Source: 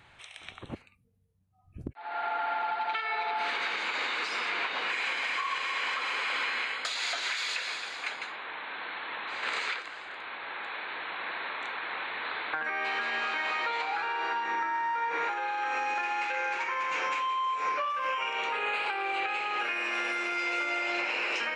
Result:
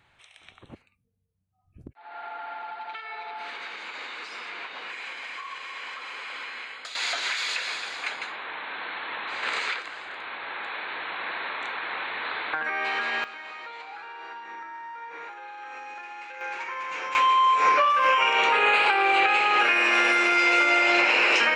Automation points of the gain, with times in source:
-6 dB
from 6.95 s +3.5 dB
from 13.24 s -9 dB
from 16.41 s -2 dB
from 17.15 s +10.5 dB

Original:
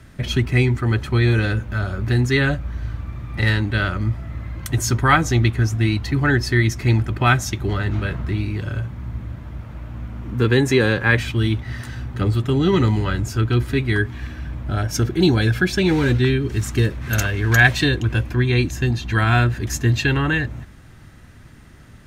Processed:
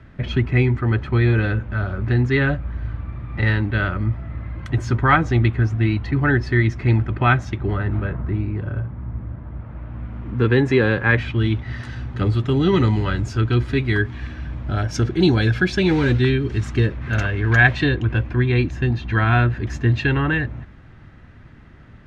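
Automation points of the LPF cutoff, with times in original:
7.33 s 2500 Hz
8.17 s 1400 Hz
9.45 s 1400 Hz
10.16 s 2700 Hz
11.25 s 2700 Hz
11.91 s 4900 Hz
16.34 s 4900 Hz
17.1 s 2700 Hz

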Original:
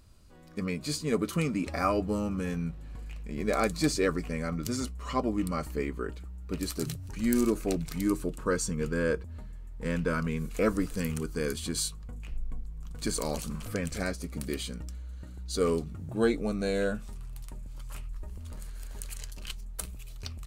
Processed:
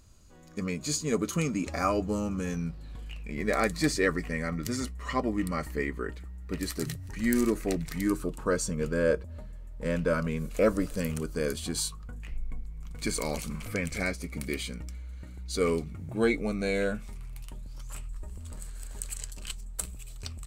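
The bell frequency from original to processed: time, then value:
bell +12.5 dB 0.22 oct
2.47 s 6700 Hz
3.44 s 1900 Hz
8.05 s 1900 Hz
8.56 s 580 Hz
11.55 s 580 Hz
12.35 s 2200 Hz
17.36 s 2200 Hz
17.95 s 7900 Hz

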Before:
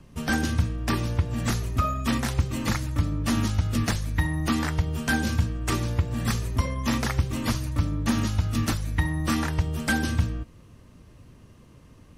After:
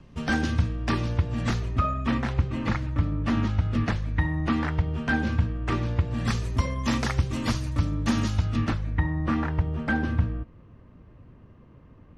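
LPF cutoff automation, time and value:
1.42 s 4700 Hz
2.04 s 2600 Hz
5.73 s 2600 Hz
6.51 s 7000 Hz
8.38 s 7000 Hz
8.57 s 3100 Hz
9.01 s 1800 Hz

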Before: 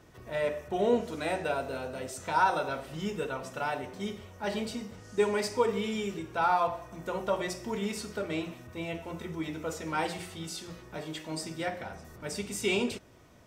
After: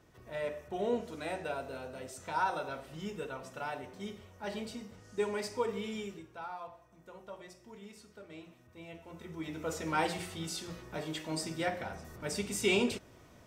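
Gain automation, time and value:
6 s -6.5 dB
6.5 s -17.5 dB
8.17 s -17.5 dB
9.06 s -11 dB
9.78 s 0 dB

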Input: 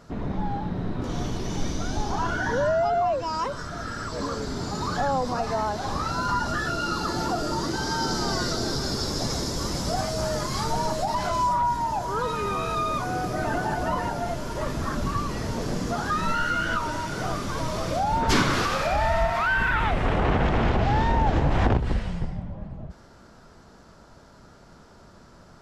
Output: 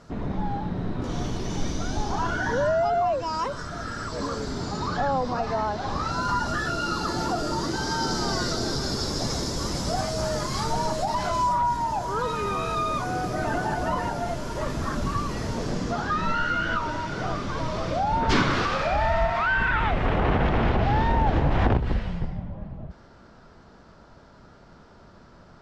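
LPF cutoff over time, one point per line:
4.46 s 10000 Hz
5 s 4600 Hz
5.85 s 4600 Hz
6.33 s 11000 Hz
15.42 s 11000 Hz
16.13 s 4600 Hz

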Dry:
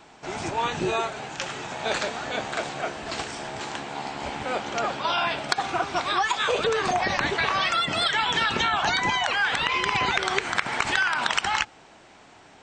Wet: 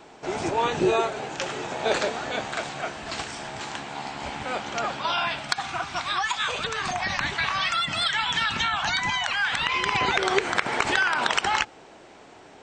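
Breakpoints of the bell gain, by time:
bell 430 Hz 1.3 oct
2.02 s +6.5 dB
2.59 s -4 dB
5.09 s -4 dB
5.58 s -13 dB
9.41 s -13 dB
9.81 s -2 dB
10.27 s +7 dB

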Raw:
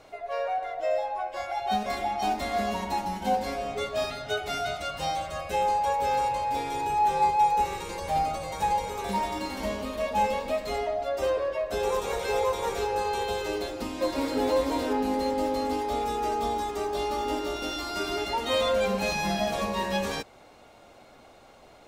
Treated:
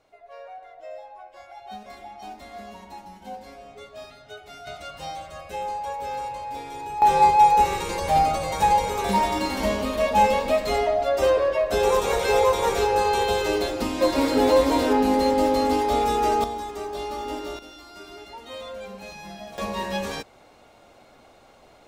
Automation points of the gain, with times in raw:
-12 dB
from 4.67 s -5 dB
from 7.02 s +7 dB
from 16.44 s -2 dB
from 17.59 s -12 dB
from 19.58 s 0 dB

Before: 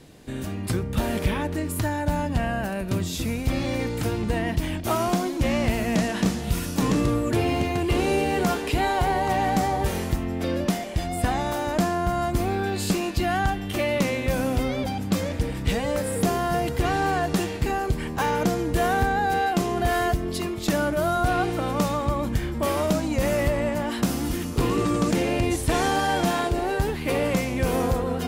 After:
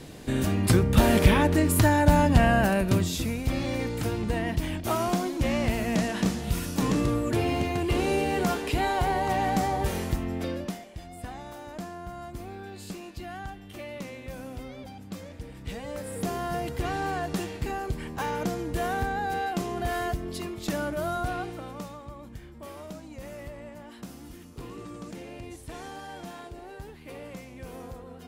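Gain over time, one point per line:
2.72 s +5.5 dB
3.33 s -3 dB
10.37 s -3 dB
10.92 s -15 dB
15.42 s -15 dB
16.42 s -6.5 dB
21.16 s -6.5 dB
22.04 s -18 dB

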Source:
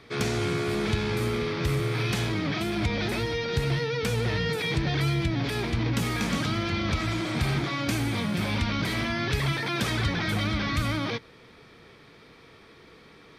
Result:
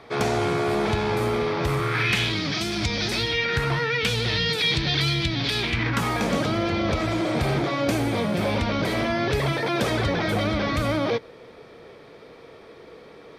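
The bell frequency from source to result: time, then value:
bell +12.5 dB 1.4 oct
1.66 s 750 Hz
2.49 s 5500 Hz
3.1 s 5500 Hz
3.74 s 1000 Hz
4.13 s 3900 Hz
5.58 s 3900 Hz
6.26 s 550 Hz

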